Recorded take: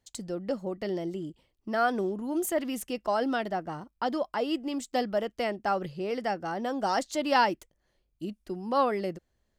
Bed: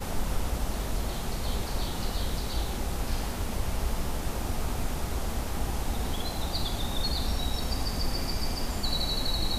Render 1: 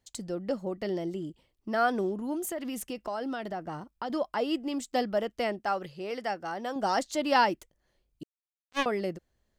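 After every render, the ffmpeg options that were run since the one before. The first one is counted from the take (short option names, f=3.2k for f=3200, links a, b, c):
-filter_complex "[0:a]asettb=1/sr,asplit=3[a][b][c];[a]atrim=end=2.344[d];[b]atrim=start=2.34:end=4.1,asetpts=PTS-STARTPTS,afade=t=in:d=0.004:c=qsin,afade=t=out:st=1.756:d=0.004:c=qsin,acompressor=threshold=-31dB:ratio=4:attack=3.2:release=140:knee=1:detection=peak[e];[c]atrim=start=4.096[f];[d][e]acrossfade=d=0.004:c1=hsin:c2=qsin[g];[g][f]acrossfade=d=0.004:c1=qsin:c2=hsin,asettb=1/sr,asplit=3[h][i][j];[h]atrim=end=5.594[k];[i]atrim=start=5.59:end=6.76,asetpts=PTS-STARTPTS,afade=t=in:d=0.004:c=qsin,afade=t=out:st=1.166:d=0.004:c=qsin,lowshelf=f=420:g=-8[l];[j]atrim=start=6.756[m];[k][l]acrossfade=d=0.004:c1=hsin:c2=qsin[n];[n][m]acrossfade=d=0.004:c1=qsin:c2=hsin,asettb=1/sr,asplit=3[o][p][q];[o]atrim=end=8.234[r];[p]atrim=start=8.23:end=8.86,asetpts=PTS-STARTPTS,afade=t=in:d=0.004:c=qsin,afade=t=out:st=0.626:d=0.004:c=qsin,acrusher=bits=2:mix=0:aa=0.5[s];[q]atrim=start=8.856[t];[r][s]acrossfade=d=0.004:c1=hsin:c2=qsin[u];[u][t]acrossfade=d=0.004:c1=qsin:c2=hsin"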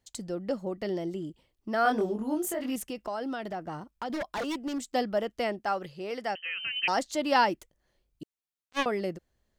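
-filter_complex "[0:a]asettb=1/sr,asplit=3[a][b][c];[a]atrim=end=1.834[d];[b]atrim=start=1.83:end=2.76,asetpts=PTS-STARTPTS,afade=t=in:d=0.004:c=qsin,afade=t=out:st=0.926:d=0.004:c=qsin,asplit=2[e][f];[f]adelay=23,volume=-2dB[g];[e][g]amix=inputs=2:normalize=0,atrim=end_sample=41013[h];[c]atrim=start=2.756[i];[d][h]acrossfade=d=0.004:c1=hsin:c2=qsin[j];[j][i]acrossfade=d=0.004:c1=qsin:c2=hsin,asettb=1/sr,asplit=3[k][l][m];[k]atrim=end=3.474[n];[l]atrim=start=3.47:end=4.92,asetpts=PTS-STARTPTS,afade=t=in:d=0.004:c=qsin,afade=t=out:st=1.446:d=0.004:c=qsin,aeval=exprs='0.0447*(abs(mod(val(0)/0.0447+3,4)-2)-1)':c=same[o];[m]atrim=start=4.916[p];[n][o]acrossfade=d=0.004:c1=hsin:c2=qsin[q];[q][p]acrossfade=d=0.004:c1=qsin:c2=hsin,asettb=1/sr,asplit=3[r][s][t];[r]atrim=end=6.354[u];[s]atrim=start=6.35:end=6.88,asetpts=PTS-STARTPTS,afade=t=in:d=0.004:c=qsin,afade=t=out:st=0.526:d=0.004:c=qsin,lowpass=f=2.8k:t=q:w=0.5098,lowpass=f=2.8k:t=q:w=0.6013,lowpass=f=2.8k:t=q:w=0.9,lowpass=f=2.8k:t=q:w=2.563,afreqshift=-3300[v];[t]atrim=start=6.876[w];[u][v]acrossfade=d=0.004:c1=hsin:c2=qsin[x];[x][w]acrossfade=d=0.004:c1=qsin:c2=hsin"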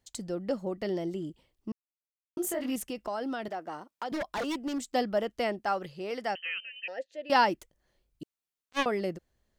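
-filter_complex "[0:a]asettb=1/sr,asplit=3[a][b][c];[a]atrim=end=3.484[d];[b]atrim=start=3.48:end=4.12,asetpts=PTS-STARTPTS,afade=t=in:d=0.004:c=qsin,afade=t=out:st=0.636:d=0.004:c=qsin,highpass=330[e];[c]atrim=start=4.116[f];[d][e]acrossfade=d=0.004:c1=hsin:c2=qsin[g];[g][f]acrossfade=d=0.004:c1=qsin:c2=hsin,asettb=1/sr,asplit=3[h][i][j];[h]atrim=end=6.604[k];[i]atrim=start=6.6:end=7.3,asetpts=PTS-STARTPTS,afade=t=in:d=0.004:c=qsin,afade=t=out:st=0.696:d=0.004:c=qsin,asplit=3[l][m][n];[l]bandpass=f=530:t=q:w=8,volume=0dB[o];[m]bandpass=f=1.84k:t=q:w=8,volume=-6dB[p];[n]bandpass=f=2.48k:t=q:w=8,volume=-9dB[q];[o][p][q]amix=inputs=3:normalize=0[r];[j]atrim=start=7.296[s];[k][r]acrossfade=d=0.004:c1=hsin:c2=qsin[t];[t][s]acrossfade=d=0.004:c1=qsin:c2=hsin,asplit=3[u][v][w];[u]atrim=end=1.72,asetpts=PTS-STARTPTS,afade=t=out:st=1.716:d=0.004:c=hsin[x];[v]atrim=start=1.72:end=2.37,asetpts=PTS-STARTPTS,volume=0[y];[w]atrim=start=2.37,asetpts=PTS-STARTPTS,afade=t=in:d=0.004:c=hsin[z];[x][y][z]concat=n=3:v=0:a=1"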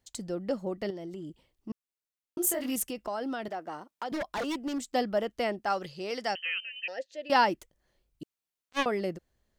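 -filter_complex "[0:a]asettb=1/sr,asplit=3[a][b][c];[a]atrim=end=0.904[d];[b]atrim=start=0.9:end=1.7,asetpts=PTS-STARTPTS,afade=t=in:d=0.004:c=qsin,afade=t=out:st=0.796:d=0.004:c=qsin,acompressor=threshold=-37dB:ratio=4:attack=3.2:release=140:knee=1:detection=peak[e];[c]atrim=start=1.696[f];[d][e]acrossfade=d=0.004:c1=hsin:c2=qsin[g];[g][f]acrossfade=d=0.004:c1=qsin:c2=hsin,asettb=1/sr,asplit=3[h][i][j];[h]atrim=end=2.414[k];[i]atrim=start=2.41:end=2.91,asetpts=PTS-STARTPTS,afade=t=in:d=0.004:c=qsin,afade=t=out:st=0.496:d=0.004:c=qsin,aemphasis=mode=production:type=cd[l];[j]atrim=start=2.906[m];[k][l]acrossfade=d=0.004:c1=hsin:c2=qsin[n];[n][m]acrossfade=d=0.004:c1=qsin:c2=hsin,asettb=1/sr,asplit=3[o][p][q];[o]atrim=end=5.704[r];[p]atrim=start=5.7:end=7.28,asetpts=PTS-STARTPTS,afade=t=in:d=0.004:c=qsin,afade=t=out:st=1.576:d=0.004:c=qsin,equalizer=f=5.4k:t=o:w=1.4:g=8.5[s];[q]atrim=start=7.276[t];[r][s]acrossfade=d=0.004:c1=hsin:c2=qsin[u];[u][t]acrossfade=d=0.004:c1=qsin:c2=hsin"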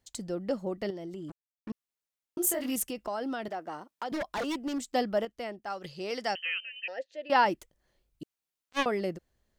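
-filter_complex "[0:a]asplit=3[a][b][c];[a]afade=t=out:st=1.28:d=0.02[d];[b]acrusher=bits=6:mix=0:aa=0.5,afade=t=in:st=1.28:d=0.02,afade=t=out:st=1.69:d=0.02[e];[c]afade=t=in:st=1.69:d=0.02[f];[d][e][f]amix=inputs=3:normalize=0,asettb=1/sr,asplit=3[g][h][i];[g]atrim=end=6.574[j];[h]atrim=start=6.57:end=7.46,asetpts=PTS-STARTPTS,afade=t=in:d=0.004:c=qsin,afade=t=out:st=0.886:d=0.004:c=qsin,bass=f=250:g=-6,treble=f=4k:g=-9[k];[i]atrim=start=7.456[l];[j][k]acrossfade=d=0.004:c1=hsin:c2=qsin[m];[m][l]acrossfade=d=0.004:c1=qsin:c2=hsin,asplit=3[n][o][p];[n]atrim=end=5.252[q];[o]atrim=start=5.248:end=5.842,asetpts=PTS-STARTPTS,volume=-7.5dB[r];[p]atrim=start=5.838[s];[q][r]acrossfade=d=0.004:c1=hsin:c2=hsin[t];[t][s]acrossfade=d=0.004:c1=hsin:c2=hsin"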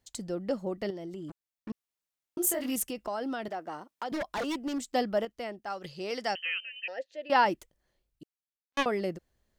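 -filter_complex "[0:a]asplit=2[a][b];[a]atrim=end=8.77,asetpts=PTS-STARTPTS,afade=t=out:st=7.53:d=1.24[c];[b]atrim=start=8.77,asetpts=PTS-STARTPTS,afade=t=in:d=0.004:c=hsin[d];[c][d]concat=n=2:v=0:a=1"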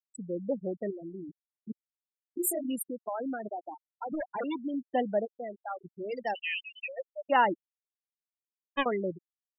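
-af "agate=range=-14dB:threshold=-48dB:ratio=16:detection=peak,afftfilt=real='re*gte(hypot(re,im),0.0562)':imag='im*gte(hypot(re,im),0.0562)':win_size=1024:overlap=0.75"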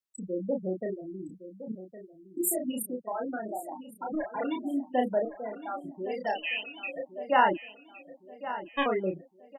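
-filter_complex "[0:a]asplit=2[a][b];[b]adelay=32,volume=-3.5dB[c];[a][c]amix=inputs=2:normalize=0,asplit=2[d][e];[e]adelay=1113,lowpass=f=4.3k:p=1,volume=-13dB,asplit=2[f][g];[g]adelay=1113,lowpass=f=4.3k:p=1,volume=0.48,asplit=2[h][i];[i]adelay=1113,lowpass=f=4.3k:p=1,volume=0.48,asplit=2[j][k];[k]adelay=1113,lowpass=f=4.3k:p=1,volume=0.48,asplit=2[l][m];[m]adelay=1113,lowpass=f=4.3k:p=1,volume=0.48[n];[d][f][h][j][l][n]amix=inputs=6:normalize=0"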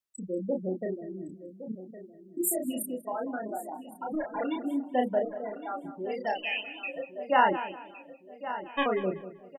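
-filter_complex "[0:a]asplit=2[a][b];[b]adelay=191,lowpass=f=2.8k:p=1,volume=-13dB,asplit=2[c][d];[d]adelay=191,lowpass=f=2.8k:p=1,volume=0.31,asplit=2[e][f];[f]adelay=191,lowpass=f=2.8k:p=1,volume=0.31[g];[a][c][e][g]amix=inputs=4:normalize=0"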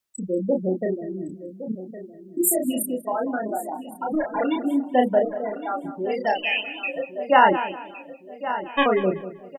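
-af "volume=8dB,alimiter=limit=-3dB:level=0:latency=1"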